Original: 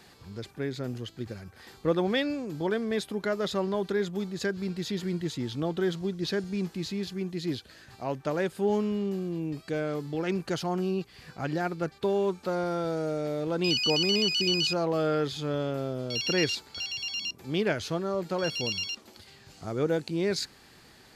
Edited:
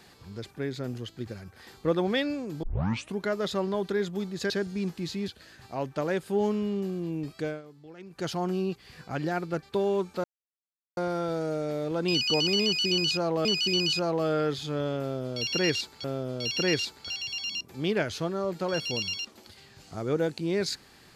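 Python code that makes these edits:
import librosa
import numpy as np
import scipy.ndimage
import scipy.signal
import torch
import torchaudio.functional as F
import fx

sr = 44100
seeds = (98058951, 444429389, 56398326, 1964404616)

y = fx.edit(x, sr, fx.tape_start(start_s=2.63, length_s=0.54),
    fx.cut(start_s=4.5, length_s=1.77),
    fx.cut(start_s=7.05, length_s=0.52),
    fx.fade_down_up(start_s=9.73, length_s=0.84, db=-16.5, fade_s=0.18),
    fx.insert_silence(at_s=12.53, length_s=0.73),
    fx.repeat(start_s=14.19, length_s=0.82, count=2),
    fx.repeat(start_s=15.74, length_s=1.04, count=2), tone=tone)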